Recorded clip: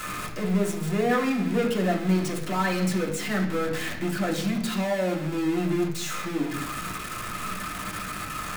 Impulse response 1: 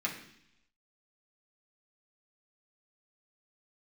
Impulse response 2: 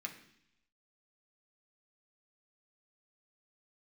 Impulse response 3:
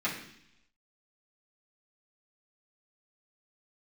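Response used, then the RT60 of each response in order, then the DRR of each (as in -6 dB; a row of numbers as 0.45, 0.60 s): 1; 0.70, 0.70, 0.70 s; -3.5, 1.5, -9.5 dB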